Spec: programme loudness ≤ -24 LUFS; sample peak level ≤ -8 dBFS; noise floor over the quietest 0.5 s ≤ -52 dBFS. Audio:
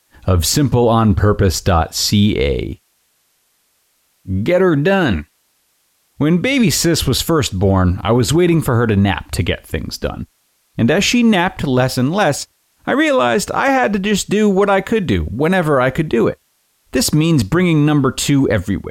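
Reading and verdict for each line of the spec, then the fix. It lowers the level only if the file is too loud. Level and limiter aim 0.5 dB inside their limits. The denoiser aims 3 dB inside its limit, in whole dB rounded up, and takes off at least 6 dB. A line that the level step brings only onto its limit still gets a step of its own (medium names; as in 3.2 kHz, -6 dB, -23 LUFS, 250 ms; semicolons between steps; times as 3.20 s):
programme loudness -15.0 LUFS: fail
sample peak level -5.0 dBFS: fail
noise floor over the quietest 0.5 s -62 dBFS: pass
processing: trim -9.5 dB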